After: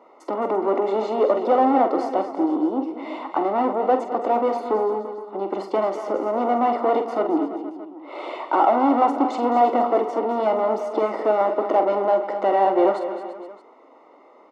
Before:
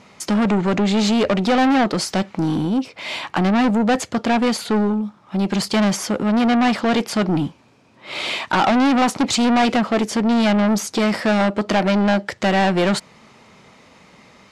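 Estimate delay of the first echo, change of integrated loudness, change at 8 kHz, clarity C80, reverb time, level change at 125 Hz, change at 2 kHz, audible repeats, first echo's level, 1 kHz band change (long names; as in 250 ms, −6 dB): 46 ms, −2.5 dB, below −25 dB, no reverb audible, no reverb audible, below −20 dB, −13.0 dB, 5, −9.0 dB, +1.5 dB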